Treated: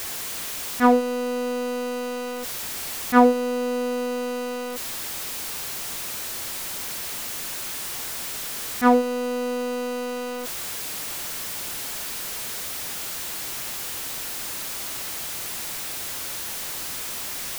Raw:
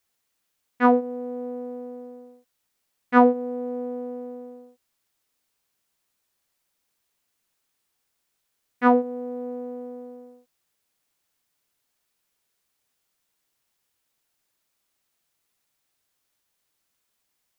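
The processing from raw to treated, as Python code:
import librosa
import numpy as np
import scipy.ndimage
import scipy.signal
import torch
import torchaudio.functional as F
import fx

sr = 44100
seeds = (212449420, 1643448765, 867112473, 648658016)

y = x + 0.5 * 10.0 ** (-25.5 / 20.0) * np.sign(x)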